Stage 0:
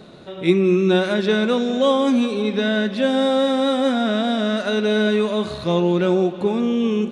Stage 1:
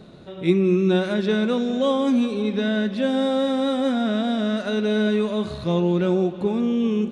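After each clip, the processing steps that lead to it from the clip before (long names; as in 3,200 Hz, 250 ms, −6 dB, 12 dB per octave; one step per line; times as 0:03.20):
low-shelf EQ 230 Hz +8.5 dB
level −5.5 dB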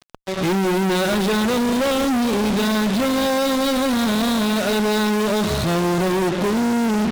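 fuzz pedal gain 42 dB, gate −37 dBFS
level −4.5 dB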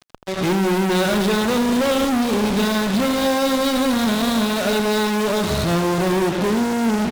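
single-tap delay 82 ms −9 dB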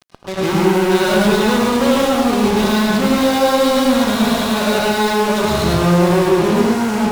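convolution reverb RT60 0.60 s, pre-delay 98 ms, DRR −2.5 dB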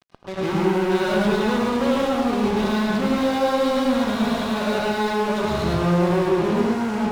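high-shelf EQ 5,600 Hz −11.5 dB
level −6 dB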